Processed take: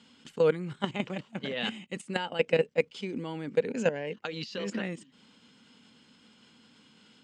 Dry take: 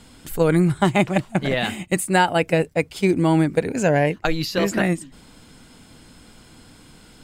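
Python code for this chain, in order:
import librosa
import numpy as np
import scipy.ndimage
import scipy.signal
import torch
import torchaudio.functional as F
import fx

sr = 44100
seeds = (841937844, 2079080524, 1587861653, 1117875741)

y = fx.dynamic_eq(x, sr, hz=480.0, q=2.7, threshold_db=-35.0, ratio=4.0, max_db=7)
y = fx.level_steps(y, sr, step_db=13)
y = fx.cabinet(y, sr, low_hz=200.0, low_slope=12, high_hz=6800.0, hz=(220.0, 330.0, 680.0, 3000.0), db=(7, -6, -8, 8))
y = y * librosa.db_to_amplitude(-6.0)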